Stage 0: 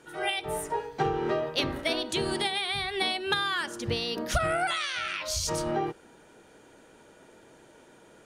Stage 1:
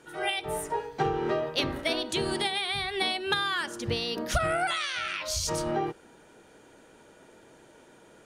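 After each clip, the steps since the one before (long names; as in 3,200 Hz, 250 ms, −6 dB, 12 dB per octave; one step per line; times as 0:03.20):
no processing that can be heard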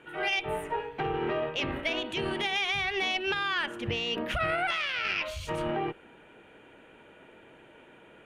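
brickwall limiter −22.5 dBFS, peak gain reduction 8.5 dB
high shelf with overshoot 3,800 Hz −11.5 dB, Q 3
harmonic generator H 2 −13 dB, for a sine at −17.5 dBFS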